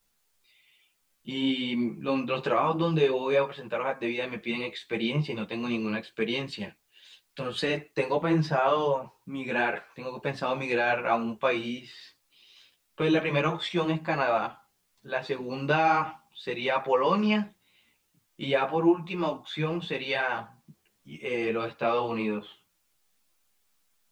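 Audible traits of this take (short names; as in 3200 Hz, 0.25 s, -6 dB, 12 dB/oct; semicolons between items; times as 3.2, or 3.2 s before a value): a quantiser's noise floor 12-bit, dither triangular; a shimmering, thickened sound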